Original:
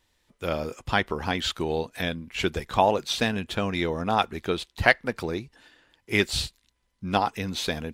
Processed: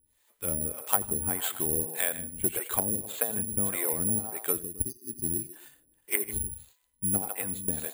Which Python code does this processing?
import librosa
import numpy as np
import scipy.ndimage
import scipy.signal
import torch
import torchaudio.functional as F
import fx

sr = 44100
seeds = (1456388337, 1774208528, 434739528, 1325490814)

y = fx.brickwall_bandstop(x, sr, low_hz=400.0, high_hz=4600.0, at=(4.58, 5.4), fade=0.02)
y = fx.env_lowpass_down(y, sr, base_hz=350.0, full_db=-18.5)
y = fx.echo_multitap(y, sr, ms=(87, 155, 264), db=(-18.0, -12.0, -19.5))
y = fx.harmonic_tremolo(y, sr, hz=1.7, depth_pct=100, crossover_hz=410.0)
y = (np.kron(scipy.signal.resample_poly(y, 1, 4), np.eye(4)[0]) * 4)[:len(y)]
y = fx.transformer_sat(y, sr, knee_hz=1800.0)
y = y * librosa.db_to_amplitude(-1.5)